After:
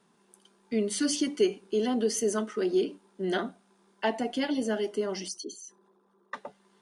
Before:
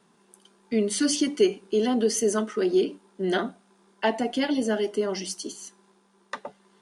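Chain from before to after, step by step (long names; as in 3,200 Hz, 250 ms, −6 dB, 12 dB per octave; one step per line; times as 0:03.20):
0:05.28–0:06.34: spectral envelope exaggerated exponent 2
level −4 dB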